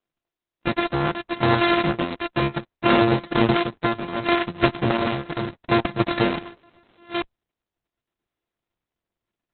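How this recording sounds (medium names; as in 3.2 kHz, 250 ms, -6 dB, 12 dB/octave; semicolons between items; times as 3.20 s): a buzz of ramps at a fixed pitch in blocks of 128 samples; tremolo saw down 0.7 Hz, depth 65%; Opus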